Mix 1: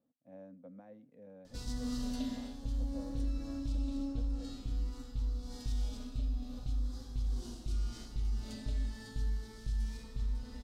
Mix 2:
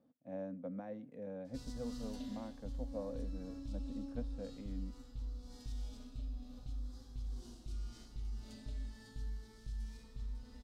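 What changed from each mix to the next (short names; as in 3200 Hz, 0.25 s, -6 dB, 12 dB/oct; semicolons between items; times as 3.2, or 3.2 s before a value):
speech +8.5 dB; background -8.0 dB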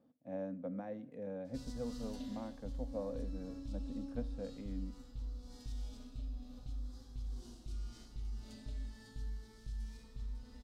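speech: send +11.0 dB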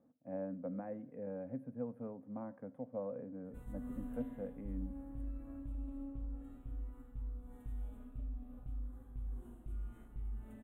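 background: entry +2.00 s; master: add Butterworth band-stop 5000 Hz, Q 0.52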